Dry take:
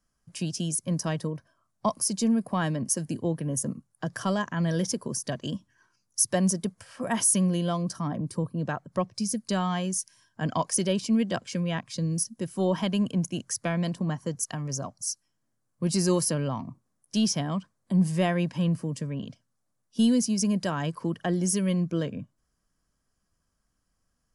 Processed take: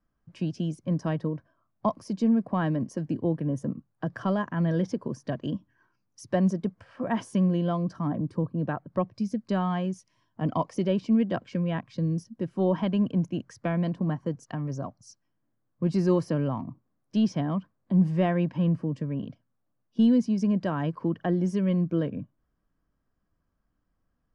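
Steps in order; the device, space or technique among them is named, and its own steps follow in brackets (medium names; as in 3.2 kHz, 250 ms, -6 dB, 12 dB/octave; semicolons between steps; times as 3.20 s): 10.00–10.84 s: band-stop 1.6 kHz, Q 5.5; phone in a pocket (low-pass 3.6 kHz 12 dB/octave; peaking EQ 300 Hz +4.5 dB 0.26 oct; treble shelf 2.3 kHz -11 dB); trim +1 dB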